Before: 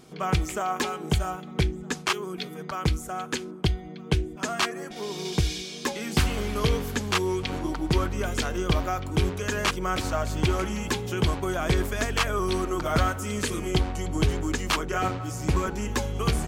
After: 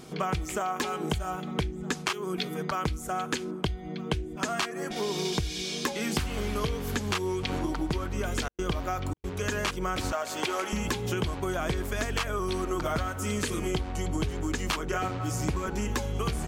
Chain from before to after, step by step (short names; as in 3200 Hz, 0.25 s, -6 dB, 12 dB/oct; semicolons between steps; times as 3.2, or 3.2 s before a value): 10.12–10.73 HPF 460 Hz 12 dB/oct; compressor 10:1, threshold -31 dBFS, peak gain reduction 14.5 dB; 8.44–9.34 step gate "xxx.xx.xx" 138 bpm -60 dB; gain +5 dB